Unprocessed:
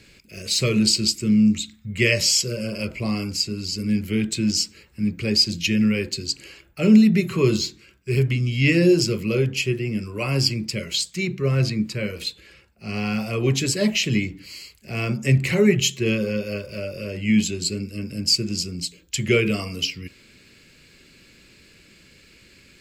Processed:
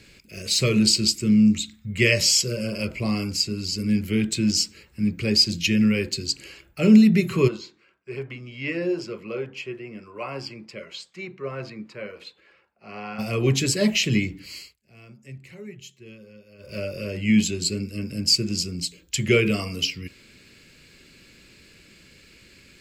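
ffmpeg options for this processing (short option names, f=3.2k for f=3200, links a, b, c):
-filter_complex "[0:a]asplit=3[a][b][c];[a]afade=t=out:st=7.47:d=0.02[d];[b]bandpass=f=920:t=q:w=1.2,afade=t=in:st=7.47:d=0.02,afade=t=out:st=13.18:d=0.02[e];[c]afade=t=in:st=13.18:d=0.02[f];[d][e][f]amix=inputs=3:normalize=0,asplit=3[g][h][i];[g]atrim=end=14.76,asetpts=PTS-STARTPTS,afade=t=out:st=14.58:d=0.18:silence=0.0707946[j];[h]atrim=start=14.76:end=16.58,asetpts=PTS-STARTPTS,volume=-23dB[k];[i]atrim=start=16.58,asetpts=PTS-STARTPTS,afade=t=in:d=0.18:silence=0.0707946[l];[j][k][l]concat=n=3:v=0:a=1"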